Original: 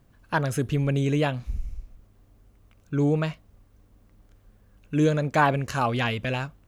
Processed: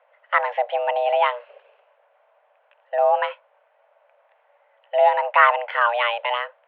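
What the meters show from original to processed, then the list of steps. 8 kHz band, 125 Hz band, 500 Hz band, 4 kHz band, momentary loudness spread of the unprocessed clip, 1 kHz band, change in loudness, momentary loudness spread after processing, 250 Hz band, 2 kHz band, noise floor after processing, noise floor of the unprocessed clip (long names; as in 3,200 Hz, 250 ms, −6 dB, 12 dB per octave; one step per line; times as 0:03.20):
below −35 dB, below −40 dB, +6.5 dB, +4.5 dB, 10 LU, +9.5 dB, +5.0 dB, 10 LU, below −40 dB, +7.5 dB, −63 dBFS, −59 dBFS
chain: log-companded quantiser 8 bits
single-sideband voice off tune +360 Hz 200–2,600 Hz
level +6 dB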